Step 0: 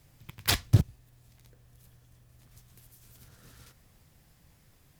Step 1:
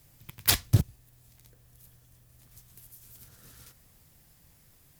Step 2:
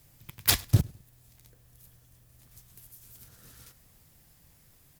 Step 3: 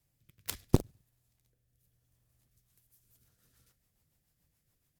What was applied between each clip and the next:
treble shelf 7.1 kHz +10 dB; trim -1 dB
feedback delay 103 ms, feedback 35%, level -24 dB
rotary cabinet horn 0.75 Hz, later 7 Hz, at 2.26 s; Chebyshev shaper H 3 -8 dB, 4 -12 dB, 6 -15 dB, 8 -33 dB, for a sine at -8 dBFS

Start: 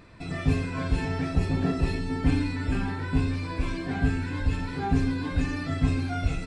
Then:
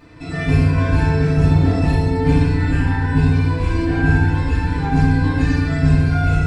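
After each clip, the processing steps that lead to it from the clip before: FDN reverb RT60 1.6 s, low-frequency decay 1.45×, high-frequency decay 0.45×, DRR -7 dB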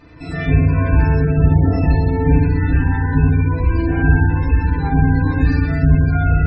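spectral gate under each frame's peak -30 dB strong; peaking EQ 64 Hz +11.5 dB 0.22 oct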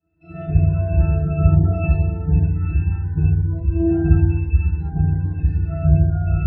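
pitch-class resonator E, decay 0.11 s; three bands expanded up and down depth 70%; trim +2.5 dB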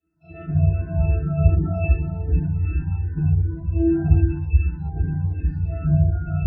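barber-pole phaser -2.6 Hz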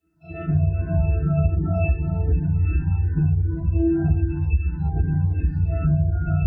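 compression 6:1, threshold -22 dBFS, peak gain reduction 12.5 dB; trim +5.5 dB

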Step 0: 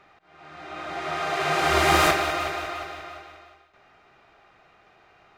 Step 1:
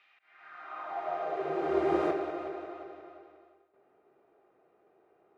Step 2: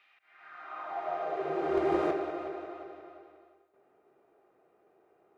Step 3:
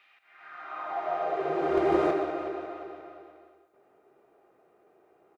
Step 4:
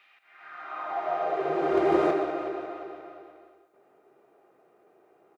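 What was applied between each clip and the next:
band-pass sweep 2.8 kHz -> 400 Hz, 0.07–1.50 s
overload inside the chain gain 19.5 dB
delay 124 ms -11.5 dB; trim +3.5 dB
high-pass 100 Hz 12 dB/octave; trim +1.5 dB

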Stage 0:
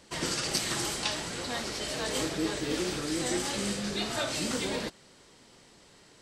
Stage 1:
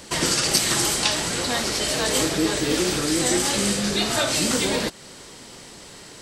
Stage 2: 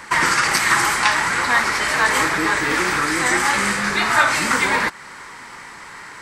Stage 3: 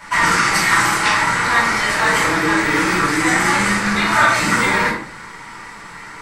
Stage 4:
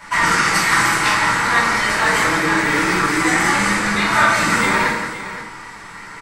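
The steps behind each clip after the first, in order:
treble shelf 8.3 kHz +8 dB; in parallel at +2.5 dB: compression, threshold -40 dBFS, peak gain reduction 16.5 dB; on the sum: trim +6 dB
high-order bell 1.4 kHz +16 dB; trim -2.5 dB
simulated room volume 540 m³, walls furnished, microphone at 7.4 m; trim -8 dB
multi-tap echo 171/518 ms -8.5/-13 dB; trim -1 dB

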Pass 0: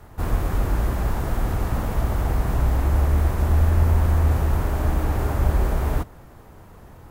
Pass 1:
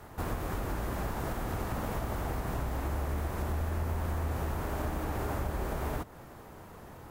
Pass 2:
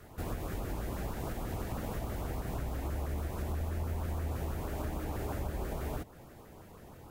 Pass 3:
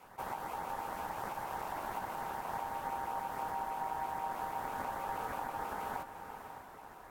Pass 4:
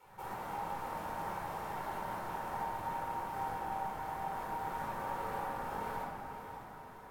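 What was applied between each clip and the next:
compression 2.5:1, threshold -27 dBFS, peak gain reduction 9.5 dB; bass shelf 100 Hz -11 dB
LFO notch saw up 6.2 Hz 770–2100 Hz; trim -2.5 dB
echo that smears into a reverb 561 ms, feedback 41%, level -8.5 dB; ring modulator 860 Hz; attacks held to a fixed rise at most 580 dB/s; trim -1 dB
simulated room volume 1900 m³, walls mixed, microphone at 4.4 m; trim -7.5 dB

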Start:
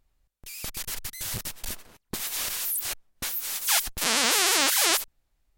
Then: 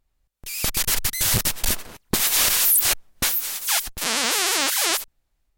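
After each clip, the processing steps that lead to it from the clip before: level rider gain up to 15.5 dB; trim -2.5 dB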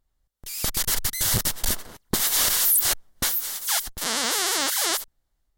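peaking EQ 2.5 kHz -9.5 dB 0.25 oct; trim -2 dB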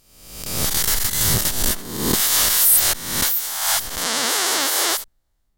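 reverse spectral sustain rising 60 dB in 0.90 s; trim +1.5 dB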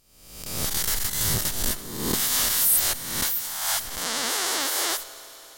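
reverberation RT60 4.5 s, pre-delay 8 ms, DRR 14 dB; trim -6 dB

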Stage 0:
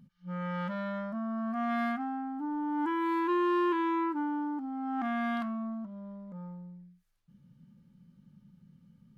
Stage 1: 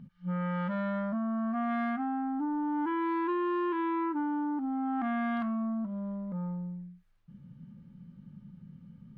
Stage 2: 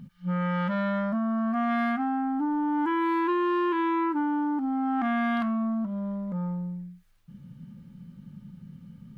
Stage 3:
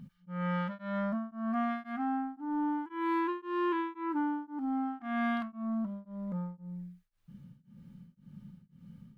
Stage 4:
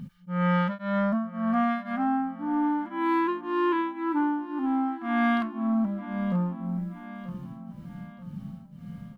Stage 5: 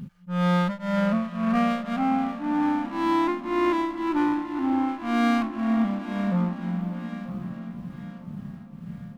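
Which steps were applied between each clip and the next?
tone controls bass +3 dB, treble -13 dB; compression 3:1, threshold -36 dBFS, peak gain reduction 9.5 dB; trim +6 dB
treble shelf 3.3 kHz +10 dB; trim +4.5 dB
tremolo of two beating tones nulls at 1.9 Hz; trim -4 dB
feedback delay 934 ms, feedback 43%, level -15.5 dB; gain riding within 4 dB 2 s; trim +7 dB
echo that smears into a reverb 563 ms, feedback 55%, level -11.5 dB; sliding maximum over 9 samples; trim +2 dB

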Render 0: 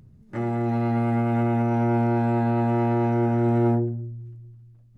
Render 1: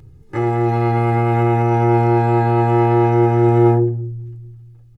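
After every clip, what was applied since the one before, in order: comb 2.4 ms, depth 85%; trim +6.5 dB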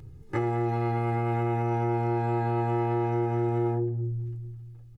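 compression 5:1, threshold -22 dBFS, peak gain reduction 13 dB; trim -2.5 dB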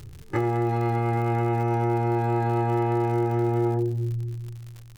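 crackle 96 per s -38 dBFS; trim +3 dB

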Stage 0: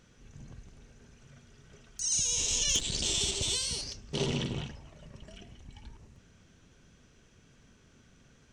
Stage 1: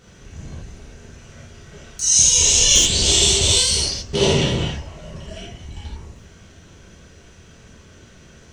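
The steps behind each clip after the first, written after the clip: gated-style reverb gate 110 ms flat, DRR -7 dB; trim +7.5 dB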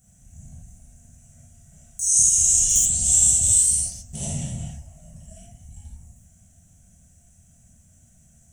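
FFT filter 150 Hz 0 dB, 240 Hz -4 dB, 410 Hz -27 dB, 710 Hz -2 dB, 1 kHz -21 dB, 1.8 kHz -14 dB, 4.6 kHz -17 dB, 7.7 kHz +14 dB; trim -8 dB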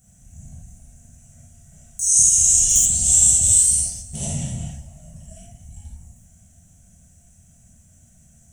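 Schroeder reverb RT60 1.6 s, combs from 32 ms, DRR 17 dB; trim +2.5 dB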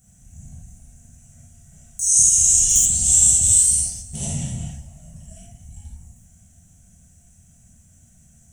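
peaking EQ 610 Hz -4.5 dB 0.32 oct

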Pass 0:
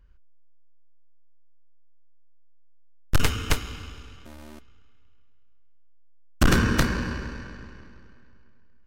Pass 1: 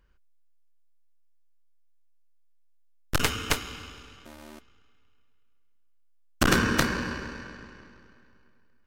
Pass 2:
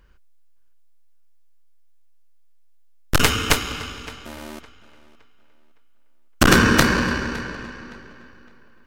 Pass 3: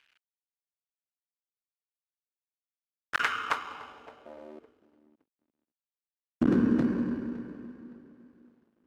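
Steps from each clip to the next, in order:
bass shelf 140 Hz -12 dB; trim +1 dB
in parallel at -1 dB: peak limiter -16.5 dBFS, peak gain reduction 7.5 dB; on the sum: tape echo 563 ms, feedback 33%, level -18 dB, low-pass 4.8 kHz; trim +4.5 dB
companded quantiser 4-bit; band-pass sweep 2.5 kHz -> 260 Hz, 2.68–5.15 s; trim -3 dB

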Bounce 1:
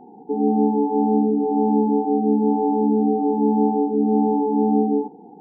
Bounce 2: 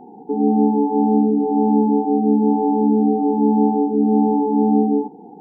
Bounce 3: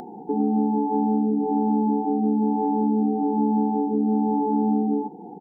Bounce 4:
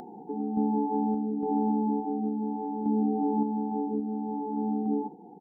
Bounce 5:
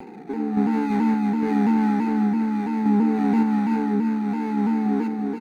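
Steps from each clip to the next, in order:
dynamic bell 560 Hz, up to -6 dB, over -36 dBFS, Q 2.1; trim +3.5 dB
compression, threshold -18 dBFS, peak gain reduction 7.5 dB; comb 5.7 ms, depth 30%; upward compressor, threshold -34 dBFS
random-step tremolo, depth 55%; trim -4 dB
median filter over 41 samples; feedback delay 332 ms, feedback 42%, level -4 dB; vibrato with a chosen wave saw down 3 Hz, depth 100 cents; trim +6.5 dB

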